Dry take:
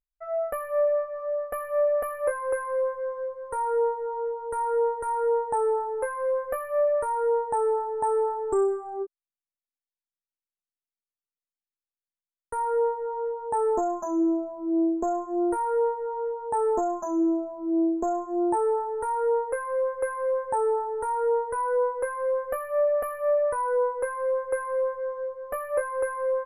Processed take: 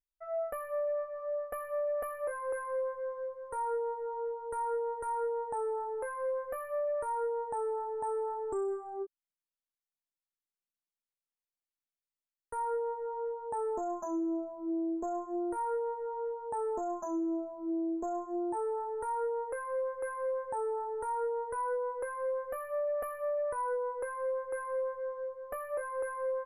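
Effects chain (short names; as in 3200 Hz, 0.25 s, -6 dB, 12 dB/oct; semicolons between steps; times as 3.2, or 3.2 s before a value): limiter -22 dBFS, peak gain reduction 7.5 dB; gain -6.5 dB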